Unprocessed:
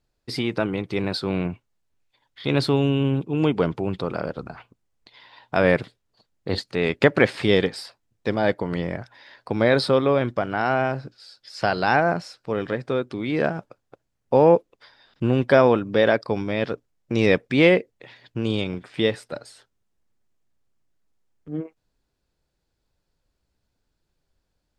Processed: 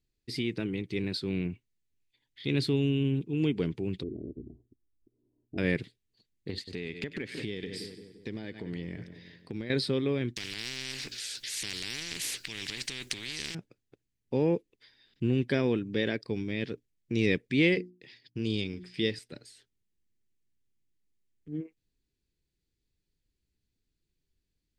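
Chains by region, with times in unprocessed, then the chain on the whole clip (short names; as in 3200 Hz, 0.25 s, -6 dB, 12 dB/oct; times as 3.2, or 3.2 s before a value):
4.03–5.58 inverse Chebyshev low-pass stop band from 1500 Hz, stop band 60 dB + comb 3 ms, depth 64%
6.5–9.7 split-band echo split 1300 Hz, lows 0.172 s, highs 96 ms, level -14.5 dB + compressor 8:1, threshold -24 dBFS
10.36–13.55 tilt shelf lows -4.5 dB, about 840 Hz + transient shaper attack -2 dB, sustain +6 dB + spectral compressor 10:1
17.72–19.19 expander -49 dBFS + bell 5000 Hz +14.5 dB 0.25 oct + notches 60/120/180/240/300/360 Hz
whole clip: band shelf 880 Hz -15 dB; notch 5300 Hz, Q 29; gain -6 dB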